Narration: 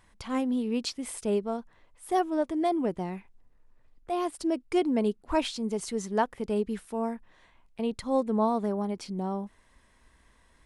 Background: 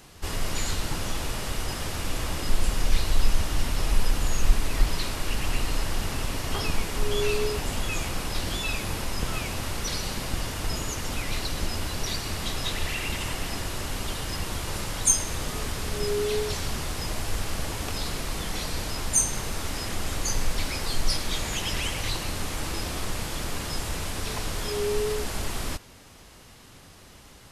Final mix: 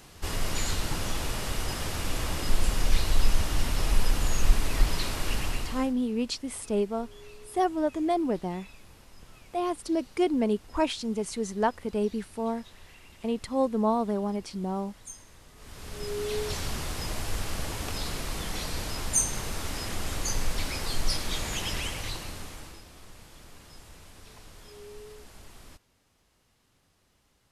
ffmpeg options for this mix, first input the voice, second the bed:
-filter_complex "[0:a]adelay=5450,volume=0.5dB[a];[1:a]volume=19.5dB,afade=t=out:st=5.34:d=0.6:silence=0.0794328,afade=t=in:st=15.56:d=0.99:silence=0.0944061,afade=t=out:st=21.65:d=1.18:silence=0.149624[b];[a][b]amix=inputs=2:normalize=0"

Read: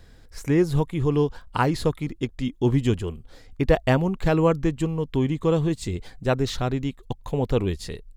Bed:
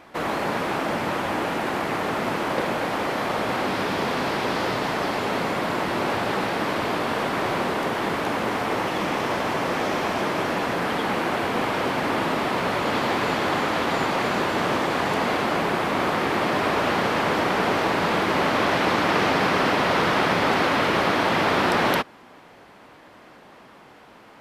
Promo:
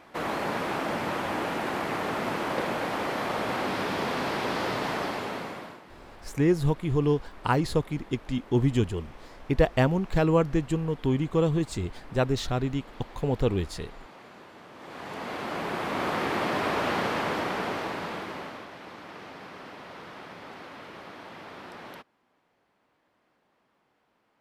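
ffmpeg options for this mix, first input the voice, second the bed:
-filter_complex "[0:a]adelay=5900,volume=-2.5dB[a];[1:a]volume=16dB,afade=t=out:st=4.94:d=0.87:silence=0.0891251,afade=t=in:st=14.74:d=1.44:silence=0.0944061,afade=t=out:st=16.98:d=1.7:silence=0.125893[b];[a][b]amix=inputs=2:normalize=0"

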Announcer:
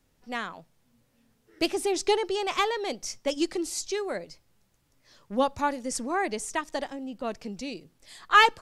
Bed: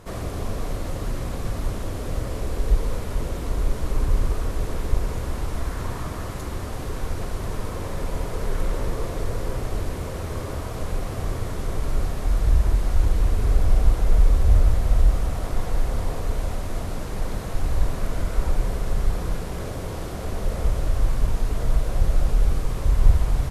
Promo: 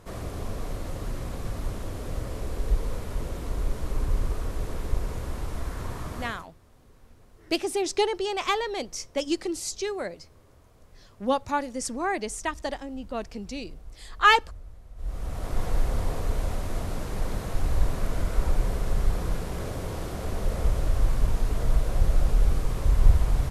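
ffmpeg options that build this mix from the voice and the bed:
-filter_complex "[0:a]adelay=5900,volume=0dB[a];[1:a]volume=20dB,afade=t=out:st=6.21:d=0.26:silence=0.0794328,afade=t=in:st=14.96:d=0.69:silence=0.0562341[b];[a][b]amix=inputs=2:normalize=0"

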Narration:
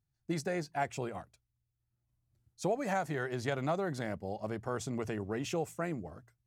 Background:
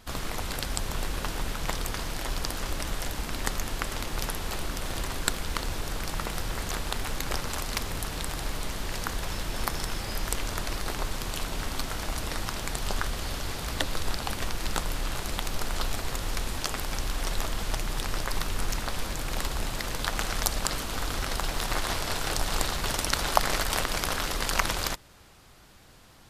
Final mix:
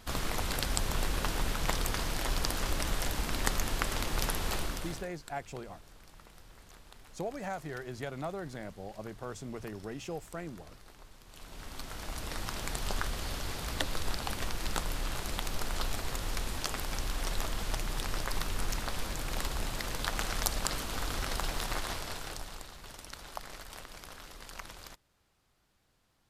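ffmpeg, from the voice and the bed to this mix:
-filter_complex "[0:a]adelay=4550,volume=-5dB[a];[1:a]volume=18.5dB,afade=t=out:st=4.54:d=0.55:silence=0.0749894,afade=t=in:st=11.26:d=1.39:silence=0.112202,afade=t=out:st=21.47:d=1.15:silence=0.177828[b];[a][b]amix=inputs=2:normalize=0"

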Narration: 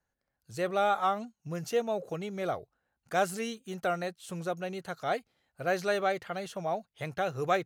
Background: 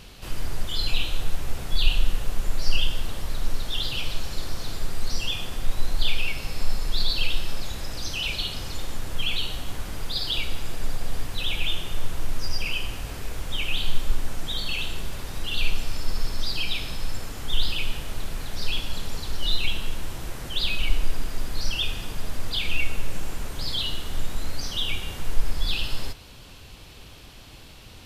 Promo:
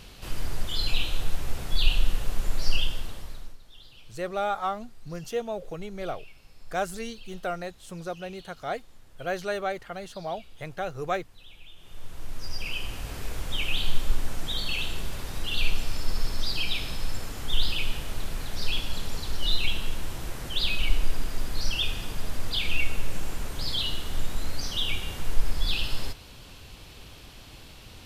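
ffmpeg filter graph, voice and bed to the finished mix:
-filter_complex "[0:a]adelay=3600,volume=-1dB[a];[1:a]volume=20.5dB,afade=t=out:st=2.67:d=0.9:silence=0.0841395,afade=t=in:st=11.76:d=1.5:silence=0.0794328[b];[a][b]amix=inputs=2:normalize=0"

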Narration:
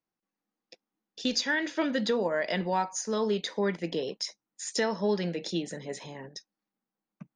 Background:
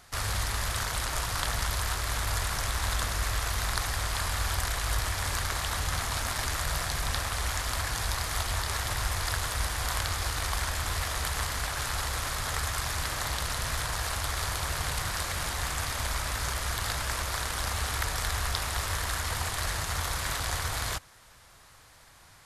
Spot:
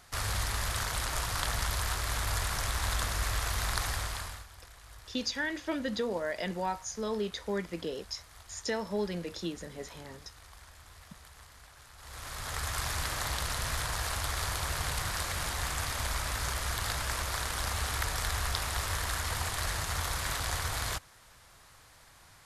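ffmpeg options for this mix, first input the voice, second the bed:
-filter_complex "[0:a]adelay=3900,volume=-5dB[a];[1:a]volume=18.5dB,afade=t=out:st=3.9:d=0.56:silence=0.0944061,afade=t=in:st=11.98:d=0.84:silence=0.0944061[b];[a][b]amix=inputs=2:normalize=0"

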